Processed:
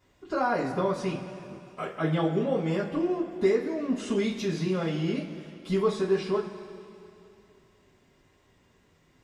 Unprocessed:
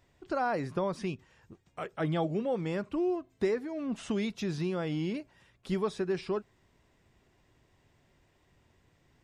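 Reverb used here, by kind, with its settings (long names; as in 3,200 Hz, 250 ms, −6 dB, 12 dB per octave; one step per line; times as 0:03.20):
coupled-rooms reverb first 0.25 s, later 2.8 s, from −18 dB, DRR −9 dB
level −5 dB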